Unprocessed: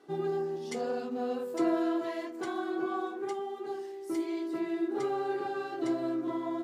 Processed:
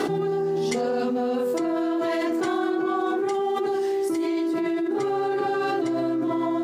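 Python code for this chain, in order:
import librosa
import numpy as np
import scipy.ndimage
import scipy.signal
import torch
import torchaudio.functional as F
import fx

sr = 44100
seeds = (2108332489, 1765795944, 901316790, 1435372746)

y = fx.low_shelf(x, sr, hz=140.0, db=5.0)
y = fx.env_flatten(y, sr, amount_pct=100)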